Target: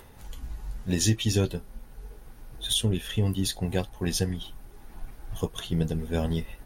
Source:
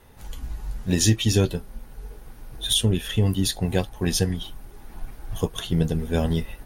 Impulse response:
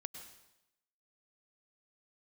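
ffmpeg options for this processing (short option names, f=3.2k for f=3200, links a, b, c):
-af "acompressor=mode=upward:threshold=-39dB:ratio=2.5,volume=-4.5dB"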